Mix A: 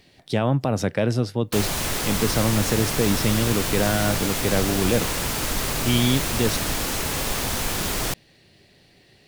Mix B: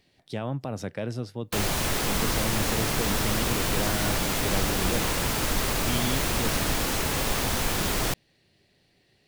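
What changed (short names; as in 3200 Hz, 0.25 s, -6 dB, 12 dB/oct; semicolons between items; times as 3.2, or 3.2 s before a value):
speech -10.0 dB; background: add bell 9800 Hz -3 dB 2.3 oct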